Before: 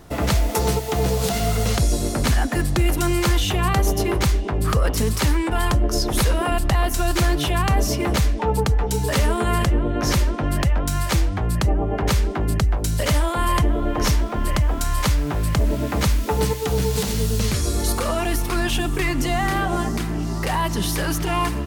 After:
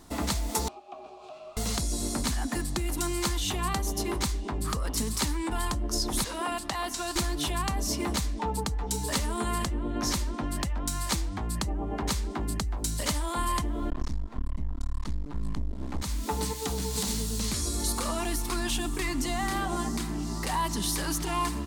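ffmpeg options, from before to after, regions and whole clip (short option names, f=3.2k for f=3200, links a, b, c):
-filter_complex "[0:a]asettb=1/sr,asplit=3[a][b][c];[a]atrim=end=0.684[d];[b]atrim=start=0.68:end=1.57,asetpts=PTS-STARTPTS,afade=t=in:d=0.004:c=qsin,afade=t=out:st=0.886:d=0.004:c=qsin,aemphasis=mode=reproduction:type=50kf,afreqshift=-69,asplit=3[e][f][g];[e]bandpass=f=730:t=q:w=8,volume=0dB[h];[f]bandpass=f=1.09k:t=q:w=8,volume=-6dB[i];[g]bandpass=f=2.44k:t=q:w=8,volume=-9dB[j];[h][i][j]amix=inputs=3:normalize=0[k];[c]atrim=start=1.566[l];[d][k]acrossfade=d=0.004:c1=hsin:c2=qsin[m];[m][l]acrossfade=d=0.004:c1=qsin:c2=hsin,asettb=1/sr,asplit=3[n][o][p];[n]atrim=end=6.244[q];[o]atrim=start=6.24:end=7.16,asetpts=PTS-STARTPTS,afade=t=in:d=0.004:c=qsin,afade=t=out:st=0.916:d=0.004:c=qsin,highpass=f=420:p=1,acrossover=split=6900[r][s];[s]acompressor=threshold=-42dB:ratio=4:attack=1:release=60[t];[r][t]amix=inputs=2:normalize=0[u];[p]atrim=start=7.156[v];[q][u]acrossfade=d=0.004:c1=hsin:c2=qsin[w];[w][v]acrossfade=d=0.004:c1=qsin:c2=hsin,asettb=1/sr,asplit=3[x][y][z];[x]atrim=end=13.904[aa];[y]atrim=start=13.9:end=16.02,asetpts=PTS-STARTPTS,afade=t=in:d=0.004:c=qsin,afade=t=out:st=2.116:d=0.004:c=qsin,aemphasis=mode=reproduction:type=bsi,aeval=exprs='max(val(0),0)':c=same[ab];[z]atrim=start=16.016[ac];[aa][ab]acrossfade=d=0.004:c1=hsin:c2=qsin[ad];[ad][ac]acrossfade=d=0.004:c1=qsin:c2=hsin,equalizer=f=2k:t=o:w=2.5:g=-14,acompressor=threshold=-20dB:ratio=6,equalizer=f=125:t=o:w=1:g=-9,equalizer=f=250:t=o:w=1:g=6,equalizer=f=500:t=o:w=1:g=-5,equalizer=f=1k:t=o:w=1:g=9,equalizer=f=2k:t=o:w=1:g=9,equalizer=f=4k:t=o:w=1:g=9,equalizer=f=8k:t=o:w=1:g=8,volume=-6dB"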